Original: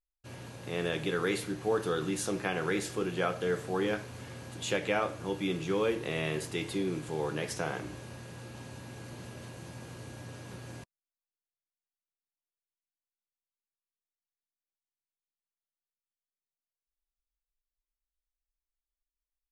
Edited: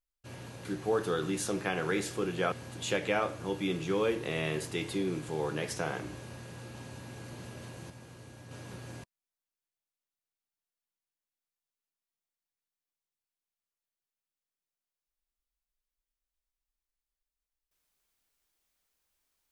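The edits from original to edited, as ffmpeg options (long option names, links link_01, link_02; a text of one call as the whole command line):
ffmpeg -i in.wav -filter_complex "[0:a]asplit=5[link_01][link_02][link_03][link_04][link_05];[link_01]atrim=end=0.652[link_06];[link_02]atrim=start=1.438:end=3.312[link_07];[link_03]atrim=start=4.318:end=9.702[link_08];[link_04]atrim=start=9.698:end=10.312,asetpts=PTS-STARTPTS,volume=-5.5dB[link_09];[link_05]atrim=start=10.308[link_10];[link_06][link_07]acrossfade=duration=0.004:curve1=hsin:curve2=hsin[link_11];[link_11][link_08]acrossfade=duration=0.004:curve1=hsin:curve2=hsin[link_12];[link_12][link_09]acrossfade=duration=0.004:curve1=hsin:curve2=hsin[link_13];[link_13][link_10]acrossfade=duration=0.004:curve1=hsin:curve2=hsin" out.wav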